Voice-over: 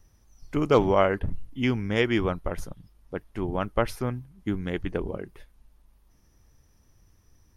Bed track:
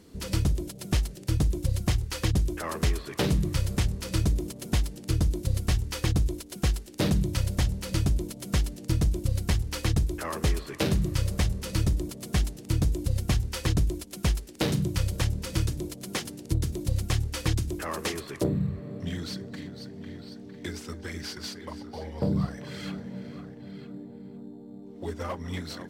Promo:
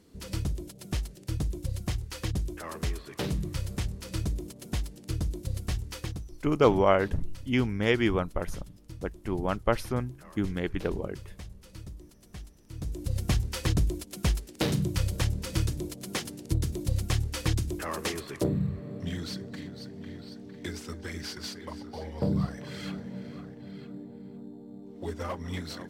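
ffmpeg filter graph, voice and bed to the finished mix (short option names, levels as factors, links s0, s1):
-filter_complex "[0:a]adelay=5900,volume=0.891[s0];[1:a]volume=3.76,afade=t=out:st=5.93:d=0.33:silence=0.237137,afade=t=in:st=12.72:d=0.55:silence=0.133352[s1];[s0][s1]amix=inputs=2:normalize=0"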